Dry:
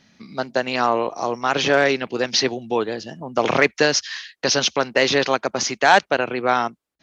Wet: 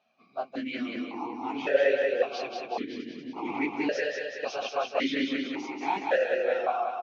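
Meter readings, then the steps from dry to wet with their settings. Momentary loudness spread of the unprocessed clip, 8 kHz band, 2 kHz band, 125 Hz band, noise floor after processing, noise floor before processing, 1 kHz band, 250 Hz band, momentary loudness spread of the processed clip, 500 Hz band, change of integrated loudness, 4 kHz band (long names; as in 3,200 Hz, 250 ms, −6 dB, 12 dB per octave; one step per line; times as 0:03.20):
9 LU, can't be measured, −12.0 dB, −20.0 dB, −60 dBFS, −74 dBFS, −11.0 dB, −5.5 dB, 11 LU, −7.0 dB, −10.0 dB, −15.5 dB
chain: random phases in long frames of 50 ms
on a send: repeating echo 187 ms, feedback 56%, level −3.5 dB
on the sum: formant filter that steps through the vowels 1.8 Hz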